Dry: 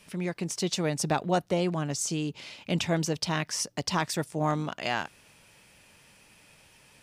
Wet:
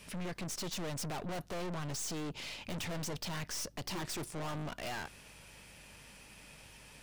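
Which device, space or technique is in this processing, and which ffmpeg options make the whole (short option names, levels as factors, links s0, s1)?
valve amplifier with mains hum: -filter_complex "[0:a]asettb=1/sr,asplit=3[s0][s1][s2];[s0]atrim=end=3.844[s3];[s1]atrim=start=3.84:end=4.32,asetpts=PTS-STARTPTS,afade=t=in:d=0.004:c=qsin,afade=t=out:st=0.476:d=0.004:c=qsin,equalizer=f=350:w=6.1:g=14[s4];[s2]atrim=start=4.316[s5];[s3][s4]acrossfade=d=0.004:c1=hsin:c2=qsin[s6];[s6][s5]acrossfade=d=0.004:c1=qsin:c2=hsin,aeval=exprs='(tanh(126*val(0)+0.5)-tanh(0.5))/126':c=same,aeval=exprs='val(0)+0.000501*(sin(2*PI*50*n/s)+sin(2*PI*2*50*n/s)/2+sin(2*PI*3*50*n/s)/3+sin(2*PI*4*50*n/s)/4+sin(2*PI*5*50*n/s)/5)':c=same,volume=1.58"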